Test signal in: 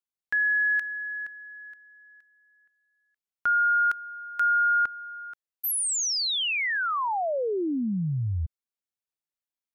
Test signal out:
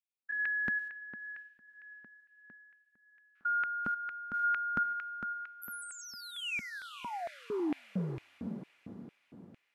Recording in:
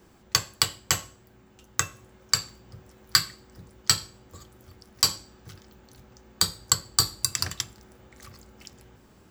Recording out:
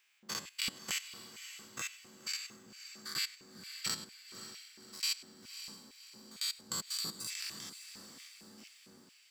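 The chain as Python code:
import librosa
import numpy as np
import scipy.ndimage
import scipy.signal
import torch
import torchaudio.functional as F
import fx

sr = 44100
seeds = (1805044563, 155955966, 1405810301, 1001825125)

y = fx.spec_steps(x, sr, hold_ms=100)
y = fx.echo_diffused(y, sr, ms=560, feedback_pct=45, wet_db=-10.5)
y = fx.filter_lfo_highpass(y, sr, shape='square', hz=2.2, low_hz=220.0, high_hz=2400.0, q=3.4)
y = y * librosa.db_to_amplitude(-8.5)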